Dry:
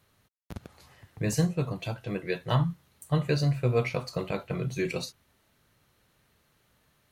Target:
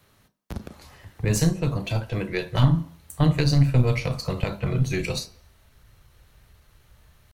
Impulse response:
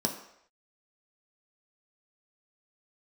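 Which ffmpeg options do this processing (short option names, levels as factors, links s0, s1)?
-filter_complex "[0:a]acrossover=split=230|3000[s0][s1][s2];[s1]acompressor=threshold=0.0224:ratio=3[s3];[s0][s3][s2]amix=inputs=3:normalize=0,asubboost=boost=10.5:cutoff=67,atempo=0.97,aeval=exprs='0.2*(cos(1*acos(clip(val(0)/0.2,-1,1)))-cos(1*PI/2))+0.0794*(cos(2*acos(clip(val(0)/0.2,-1,1)))-cos(2*PI/2))':c=same,asplit=2[s4][s5];[1:a]atrim=start_sample=2205,afade=t=out:st=0.33:d=0.01,atrim=end_sample=14994,adelay=33[s6];[s5][s6]afir=irnorm=-1:irlink=0,volume=0.126[s7];[s4][s7]amix=inputs=2:normalize=0,volume=2.11"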